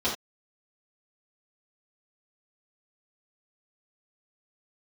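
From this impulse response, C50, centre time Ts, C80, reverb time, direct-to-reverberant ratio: 6.0 dB, 28 ms, 11.5 dB, no single decay rate, -8.5 dB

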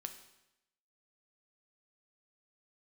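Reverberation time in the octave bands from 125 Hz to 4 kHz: 0.90 s, 0.90 s, 0.90 s, 0.90 s, 0.90 s, 0.85 s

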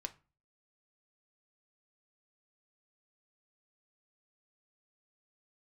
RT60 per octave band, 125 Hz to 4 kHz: 0.50 s, 0.45 s, 0.30 s, 0.35 s, 0.30 s, 0.25 s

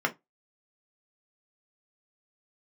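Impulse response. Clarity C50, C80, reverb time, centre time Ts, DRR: 21.0 dB, 33.0 dB, 0.15 s, 7 ms, 2.0 dB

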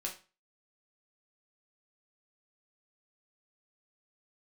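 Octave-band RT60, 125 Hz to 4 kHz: 0.35 s, 0.35 s, 0.35 s, 0.35 s, 0.30 s, 0.30 s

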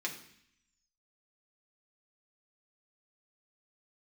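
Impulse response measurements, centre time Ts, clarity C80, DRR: 17 ms, 12.5 dB, -1.5 dB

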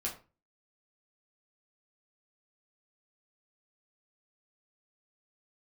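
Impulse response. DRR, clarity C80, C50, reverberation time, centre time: -3.5 dB, 15.0 dB, 10.0 dB, 0.30 s, 20 ms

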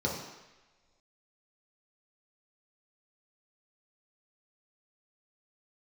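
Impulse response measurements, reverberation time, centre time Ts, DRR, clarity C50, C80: no single decay rate, 49 ms, -3.5 dB, 3.5 dB, 6.0 dB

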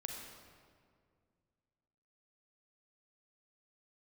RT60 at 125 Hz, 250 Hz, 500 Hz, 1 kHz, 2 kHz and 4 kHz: 2.8 s, 2.6 s, 2.3 s, 1.9 s, 1.6 s, 1.3 s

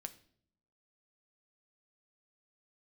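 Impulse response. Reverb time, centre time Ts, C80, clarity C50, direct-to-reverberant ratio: 0.60 s, 5 ms, 20.0 dB, 16.0 dB, 7.5 dB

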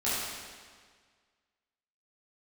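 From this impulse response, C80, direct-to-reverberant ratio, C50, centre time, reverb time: -0.5 dB, -11.5 dB, -3.0 dB, 121 ms, 1.7 s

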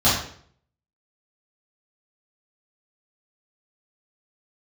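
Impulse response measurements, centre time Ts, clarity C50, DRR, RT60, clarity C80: 47 ms, 3.0 dB, -11.5 dB, 0.55 s, 7.0 dB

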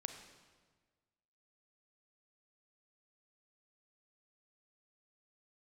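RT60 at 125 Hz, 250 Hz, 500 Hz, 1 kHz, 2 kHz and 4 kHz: 1.7 s, 1.6 s, 1.5 s, 1.4 s, 1.3 s, 1.2 s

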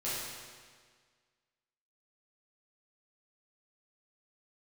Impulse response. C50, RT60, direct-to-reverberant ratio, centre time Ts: -2.5 dB, 1.7 s, -10.5 dB, 123 ms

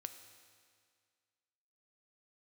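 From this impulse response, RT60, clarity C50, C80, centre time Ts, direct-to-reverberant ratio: 2.0 s, 9.5 dB, 10.5 dB, 21 ms, 8.0 dB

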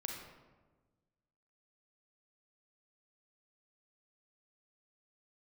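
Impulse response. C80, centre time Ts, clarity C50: 4.5 dB, 53 ms, 2.0 dB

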